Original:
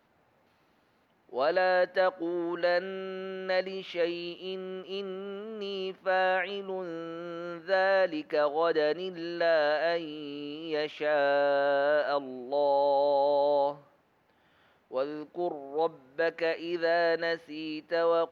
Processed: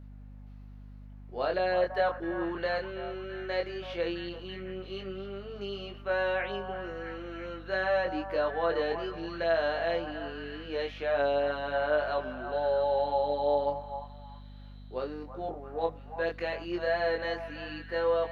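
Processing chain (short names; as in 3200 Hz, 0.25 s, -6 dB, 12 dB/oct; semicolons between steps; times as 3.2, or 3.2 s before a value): delay with a stepping band-pass 0.332 s, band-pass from 920 Hz, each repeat 0.7 oct, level -6 dB; chorus 0.16 Hz, delay 19.5 ms, depth 4.7 ms; hum 50 Hz, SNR 15 dB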